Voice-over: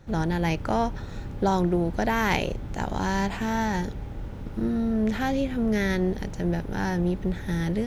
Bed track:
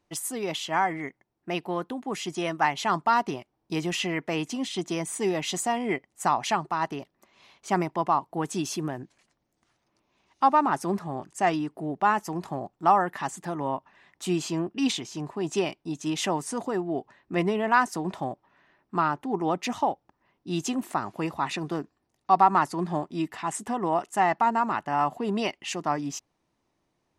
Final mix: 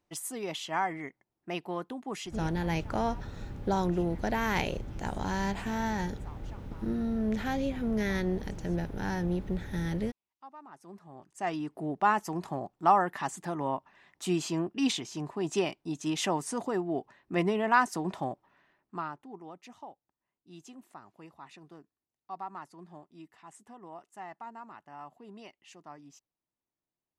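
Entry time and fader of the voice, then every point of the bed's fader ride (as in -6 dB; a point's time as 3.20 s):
2.25 s, -5.5 dB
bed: 2.23 s -5.5 dB
2.61 s -29 dB
10.55 s -29 dB
11.76 s -2.5 dB
18.51 s -2.5 dB
19.53 s -21 dB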